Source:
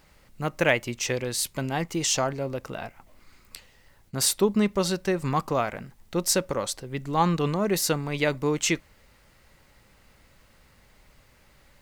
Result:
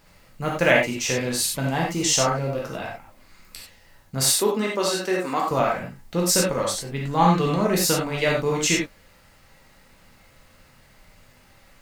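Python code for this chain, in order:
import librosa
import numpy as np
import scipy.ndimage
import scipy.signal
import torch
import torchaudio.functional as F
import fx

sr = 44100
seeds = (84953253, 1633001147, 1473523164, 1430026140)

y = fx.highpass(x, sr, hz=260.0, slope=24, at=(4.35, 5.51))
y = fx.rev_gated(y, sr, seeds[0], gate_ms=120, shape='flat', drr_db=-3.0)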